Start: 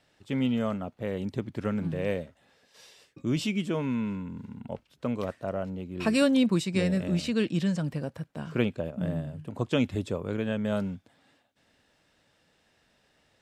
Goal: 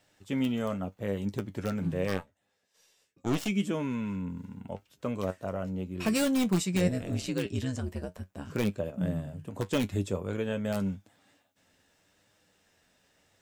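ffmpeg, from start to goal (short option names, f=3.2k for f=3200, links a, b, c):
-filter_complex "[0:a]aexciter=amount=2.1:drive=5.1:freq=6k,asplit=2[a][b];[b]aeval=exprs='(mod(7.08*val(0)+1,2)-1)/7.08':c=same,volume=-8.5dB[c];[a][c]amix=inputs=2:normalize=0,asplit=3[d][e][f];[d]afade=t=out:st=2.07:d=0.02[g];[e]aeval=exprs='0.2*(cos(1*acos(clip(val(0)/0.2,-1,1)))-cos(1*PI/2))+0.0126*(cos(4*acos(clip(val(0)/0.2,-1,1)))-cos(4*PI/2))+0.0355*(cos(7*acos(clip(val(0)/0.2,-1,1)))-cos(7*PI/2))':c=same,afade=t=in:st=2.07:d=0.02,afade=t=out:st=3.47:d=0.02[h];[f]afade=t=in:st=3.47:d=0.02[i];[g][h][i]amix=inputs=3:normalize=0,asettb=1/sr,asplit=3[j][k][l];[j]atrim=end=6.874[m];[k]atrim=start=6.87:end=8.5,asetpts=PTS-STARTPTS,afade=t=in:d=0.004:c=qsin,afade=t=out:st=1.626:d=0.004:c=qsin,aeval=exprs='val(0)*sin(2*PI*65*n/s)':c=same[n];[l]atrim=start=8.496[o];[m][n]acrossfade=d=0.004:c1=hsin:c2=qsin[p];[p][o]acrossfade=d=0.004:c1=qsin:c2=hsin,flanger=delay=9.7:depth=1.7:regen=51:speed=0.81:shape=triangular"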